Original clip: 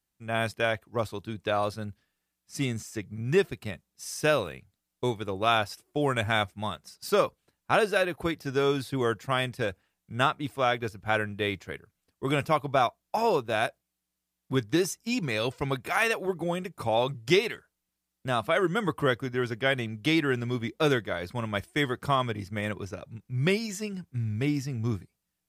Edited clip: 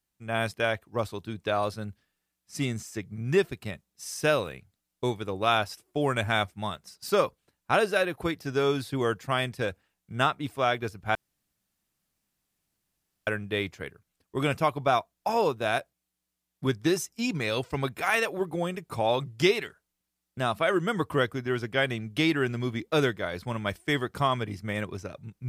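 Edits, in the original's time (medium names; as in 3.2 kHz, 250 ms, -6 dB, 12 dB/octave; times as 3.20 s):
11.15 s: insert room tone 2.12 s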